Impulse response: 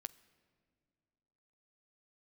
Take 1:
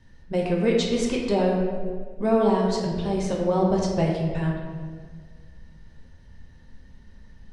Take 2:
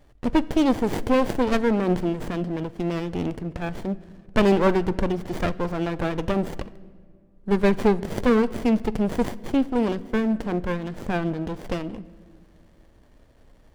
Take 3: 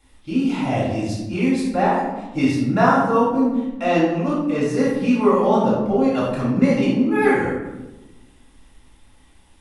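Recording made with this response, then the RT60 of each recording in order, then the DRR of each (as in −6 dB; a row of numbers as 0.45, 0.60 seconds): 2; 1.7, 2.2, 1.1 seconds; −2.5, 15.0, −7.5 decibels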